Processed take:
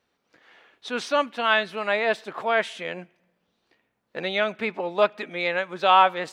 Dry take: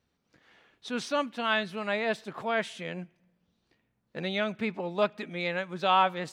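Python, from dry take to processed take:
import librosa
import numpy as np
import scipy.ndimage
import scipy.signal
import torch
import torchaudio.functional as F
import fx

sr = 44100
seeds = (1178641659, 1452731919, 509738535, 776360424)

y = fx.bass_treble(x, sr, bass_db=-14, treble_db=-5)
y = F.gain(torch.from_numpy(y), 7.0).numpy()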